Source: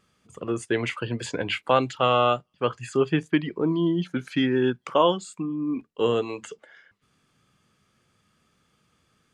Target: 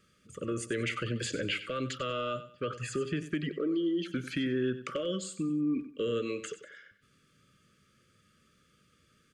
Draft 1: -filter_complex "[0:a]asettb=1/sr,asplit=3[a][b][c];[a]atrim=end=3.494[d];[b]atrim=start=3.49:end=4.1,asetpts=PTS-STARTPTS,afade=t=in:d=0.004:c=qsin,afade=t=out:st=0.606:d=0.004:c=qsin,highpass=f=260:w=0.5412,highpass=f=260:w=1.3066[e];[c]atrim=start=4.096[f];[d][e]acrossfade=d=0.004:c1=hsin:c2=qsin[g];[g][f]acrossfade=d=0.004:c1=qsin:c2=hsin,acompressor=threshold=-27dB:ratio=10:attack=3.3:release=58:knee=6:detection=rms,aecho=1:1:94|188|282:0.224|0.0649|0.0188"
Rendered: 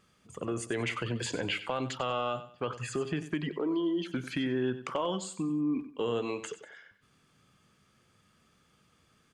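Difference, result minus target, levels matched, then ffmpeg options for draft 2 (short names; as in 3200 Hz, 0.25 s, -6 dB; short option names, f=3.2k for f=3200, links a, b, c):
1000 Hz band +4.5 dB
-filter_complex "[0:a]asettb=1/sr,asplit=3[a][b][c];[a]atrim=end=3.494[d];[b]atrim=start=3.49:end=4.1,asetpts=PTS-STARTPTS,afade=t=in:d=0.004:c=qsin,afade=t=out:st=0.606:d=0.004:c=qsin,highpass=f=260:w=0.5412,highpass=f=260:w=1.3066[e];[c]atrim=start=4.096[f];[d][e]acrossfade=d=0.004:c1=hsin:c2=qsin[g];[g][f]acrossfade=d=0.004:c1=qsin:c2=hsin,acompressor=threshold=-27dB:ratio=10:attack=3.3:release=58:knee=6:detection=rms,asuperstop=centerf=840:order=20:qfactor=1.6,aecho=1:1:94|188|282:0.224|0.0649|0.0188"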